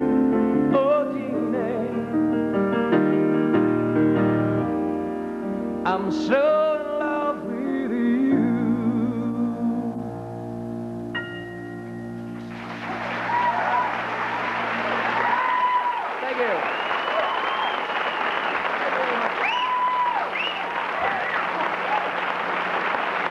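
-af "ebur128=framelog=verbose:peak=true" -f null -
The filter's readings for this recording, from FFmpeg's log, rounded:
Integrated loudness:
  I:         -23.2 LUFS
  Threshold: -33.4 LUFS
Loudness range:
  LRA:         6.0 LU
  Threshold: -43.5 LUFS
  LRA low:   -27.7 LUFS
  LRA high:  -21.6 LUFS
True peak:
  Peak:       -7.9 dBFS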